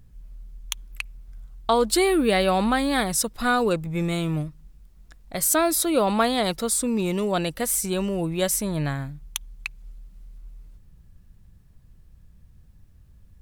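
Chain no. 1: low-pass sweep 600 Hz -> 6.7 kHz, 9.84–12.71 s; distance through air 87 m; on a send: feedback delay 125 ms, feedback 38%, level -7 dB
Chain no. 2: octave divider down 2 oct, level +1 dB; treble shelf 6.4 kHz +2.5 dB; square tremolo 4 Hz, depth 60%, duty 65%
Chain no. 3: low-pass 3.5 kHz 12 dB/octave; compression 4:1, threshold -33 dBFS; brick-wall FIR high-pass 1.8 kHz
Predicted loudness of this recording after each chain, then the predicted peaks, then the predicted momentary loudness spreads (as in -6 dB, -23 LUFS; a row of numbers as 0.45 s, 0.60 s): -20.5 LUFS, -24.5 LUFS, -45.0 LUFS; -5.0 dBFS, -5.5 dBFS, -16.0 dBFS; 13 LU, 15 LU, 9 LU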